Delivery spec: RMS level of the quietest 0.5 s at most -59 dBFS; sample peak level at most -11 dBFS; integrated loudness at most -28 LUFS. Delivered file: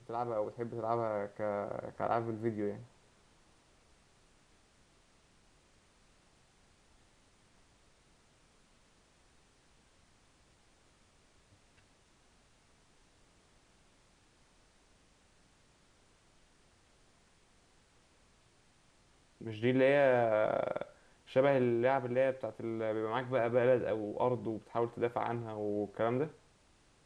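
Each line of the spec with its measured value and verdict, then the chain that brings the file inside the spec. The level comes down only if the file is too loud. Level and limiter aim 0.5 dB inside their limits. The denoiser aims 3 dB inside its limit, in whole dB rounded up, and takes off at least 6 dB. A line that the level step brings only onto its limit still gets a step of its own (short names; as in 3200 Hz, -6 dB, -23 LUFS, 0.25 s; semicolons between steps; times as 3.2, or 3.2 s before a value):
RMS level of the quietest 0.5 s -67 dBFS: OK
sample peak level -17.0 dBFS: OK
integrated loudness -33.5 LUFS: OK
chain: none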